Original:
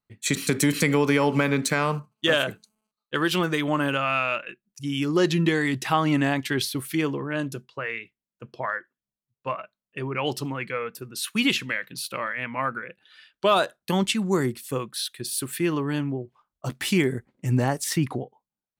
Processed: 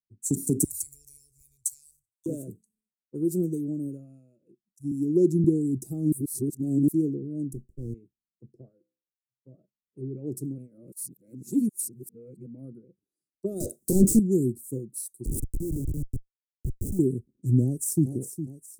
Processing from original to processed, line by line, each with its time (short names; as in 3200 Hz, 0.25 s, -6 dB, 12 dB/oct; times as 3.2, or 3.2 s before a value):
0.64–2.26 inverse Chebyshev band-stop 150–1100 Hz
3.4–4.41 fade out, to -12.5 dB
4.91–5.44 HPF 140 Hz 24 dB/oct
6.12–6.88 reverse
7.53–7.94 running maximum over 33 samples
8.68–9.54 resonator 64 Hz, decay 0.47 s
10.58–12.46 reverse
13.6–14.19 overdrive pedal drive 36 dB, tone 4500 Hz, clips at -9.5 dBFS
15.25–16.99 Schmitt trigger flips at -24.5 dBFS
17.64–18.1 echo throw 0.41 s, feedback 60%, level -8 dB
whole clip: elliptic band-stop 360–8000 Hz, stop band 50 dB; three-band expander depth 40%